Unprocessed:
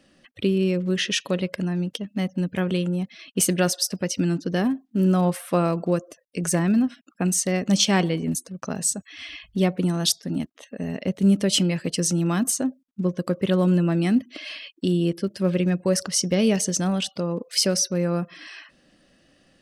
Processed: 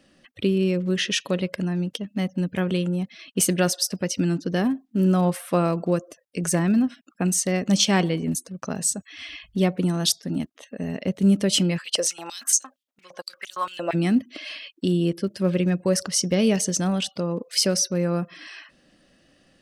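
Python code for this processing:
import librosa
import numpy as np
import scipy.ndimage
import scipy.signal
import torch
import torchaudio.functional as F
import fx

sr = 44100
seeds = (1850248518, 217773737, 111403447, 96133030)

y = fx.filter_held_highpass(x, sr, hz=8.7, low_hz=590.0, high_hz=6200.0, at=(11.77, 13.93), fade=0.02)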